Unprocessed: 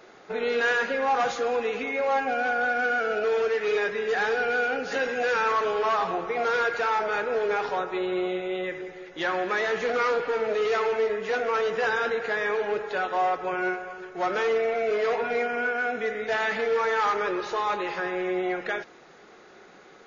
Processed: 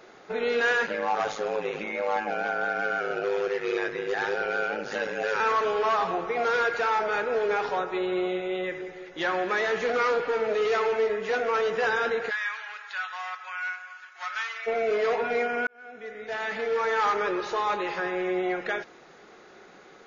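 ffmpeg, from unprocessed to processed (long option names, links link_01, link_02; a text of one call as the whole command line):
ffmpeg -i in.wav -filter_complex "[0:a]asettb=1/sr,asplit=3[link_01][link_02][link_03];[link_01]atrim=end=0.864[link_04];[link_02]atrim=start=0.86:end=5.4,asetpts=PTS-STARTPTS,afade=type=in:duration=0.004:curve=qsin,afade=type=out:start_time=4.536:duration=0.004:curve=qsin,aeval=exprs='val(0)*sin(2*PI*52*n/s)':channel_layout=same[link_05];[link_03]atrim=start=5.396[link_06];[link_04][link_05]acrossfade=duration=0.004:curve1=hsin:curve2=qsin[link_07];[link_07][link_06]acrossfade=duration=0.004:curve1=qsin:curve2=hsin,asplit=3[link_08][link_09][link_10];[link_08]afade=type=out:start_time=12.29:duration=0.02[link_11];[link_09]highpass=frequency=1200:width=0.5412,highpass=frequency=1200:width=1.3066,afade=type=in:start_time=12.29:duration=0.02,afade=type=out:start_time=14.66:duration=0.02[link_12];[link_10]afade=type=in:start_time=14.66:duration=0.02[link_13];[link_11][link_12][link_13]amix=inputs=3:normalize=0,asplit=2[link_14][link_15];[link_14]atrim=end=15.67,asetpts=PTS-STARTPTS,afade=type=out:start_time=15.666:duration=0.004:curve=hsin[link_16];[link_15]atrim=start=15.67,asetpts=PTS-STARTPTS,afade=type=in:duration=1.37[link_17];[link_16][link_17]concat=n=2:v=0:a=1" out.wav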